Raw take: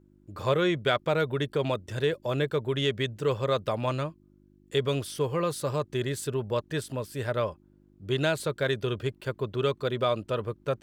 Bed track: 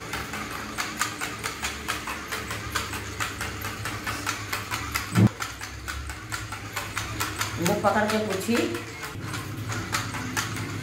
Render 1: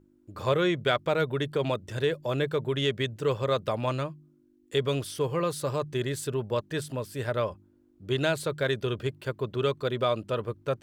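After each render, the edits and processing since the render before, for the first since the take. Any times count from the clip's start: de-hum 50 Hz, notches 4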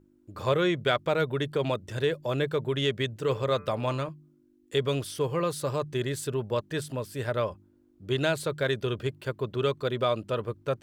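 3.18–4.09 de-hum 146.7 Hz, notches 17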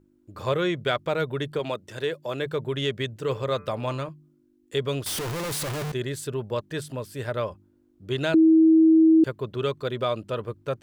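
1.59–2.46 HPF 260 Hz 6 dB/oct; 5.06–5.92 infinite clipping; 8.34–9.24 bleep 321 Hz -12.5 dBFS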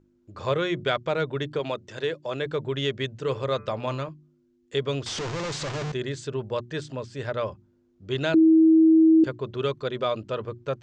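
steep low-pass 7300 Hz 48 dB/oct; notches 60/120/180/240/300/360 Hz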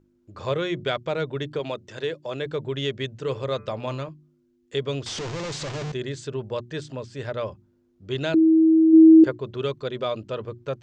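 8.93–9.37 spectral gain 290–2200 Hz +6 dB; dynamic EQ 1300 Hz, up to -3 dB, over -40 dBFS, Q 1.1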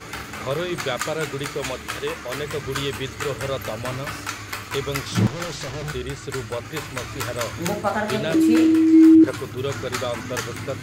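add bed track -1 dB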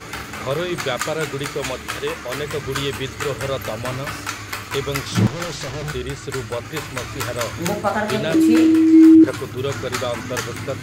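gain +2.5 dB

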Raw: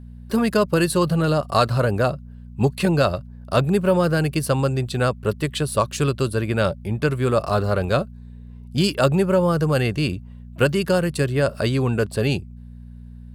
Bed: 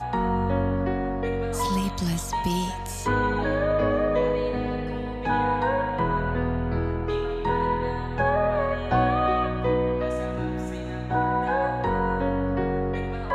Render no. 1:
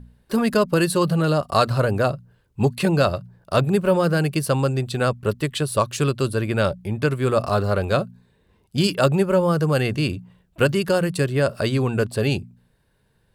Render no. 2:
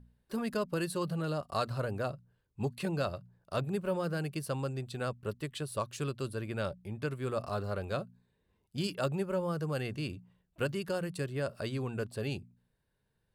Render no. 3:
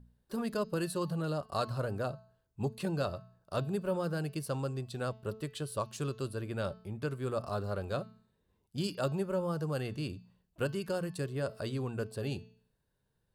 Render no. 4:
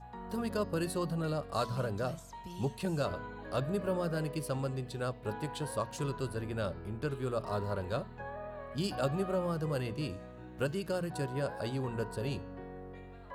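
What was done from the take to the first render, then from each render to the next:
de-hum 60 Hz, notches 4
gain -14.5 dB
bell 2200 Hz -5.5 dB 0.76 oct; de-hum 218.4 Hz, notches 31
add bed -20.5 dB

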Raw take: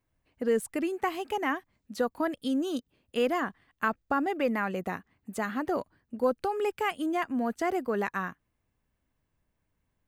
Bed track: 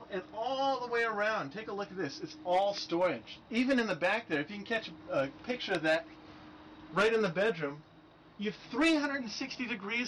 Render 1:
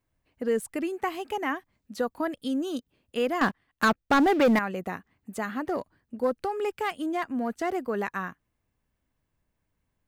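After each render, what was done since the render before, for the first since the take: 3.41–4.59 sample leveller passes 3; 5.61–7.83 self-modulated delay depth 0.059 ms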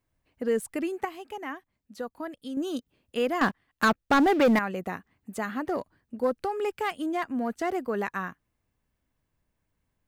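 1.05–2.57 gain -7 dB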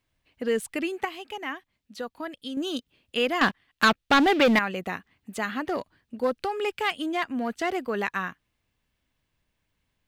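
bell 3200 Hz +10 dB 1.6 oct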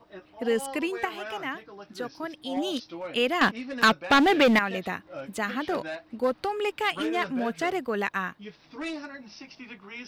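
add bed track -7 dB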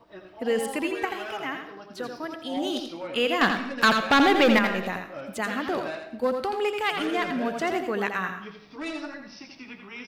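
echo 84 ms -6.5 dB; digital reverb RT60 0.64 s, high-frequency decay 0.6×, pre-delay 65 ms, DRR 11 dB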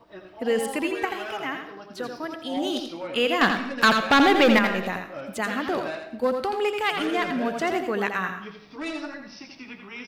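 gain +1.5 dB

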